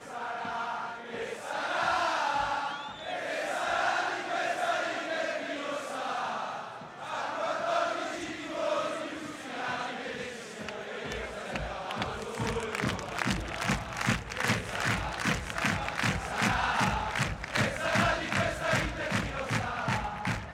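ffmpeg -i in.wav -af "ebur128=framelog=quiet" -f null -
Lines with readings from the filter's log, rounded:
Integrated loudness:
  I:         -31.5 LUFS
  Threshold: -41.6 LUFS
Loudness range:
  LRA:         6.3 LU
  Threshold: -51.5 LUFS
  LRA low:   -35.3 LUFS
  LRA high:  -29.0 LUFS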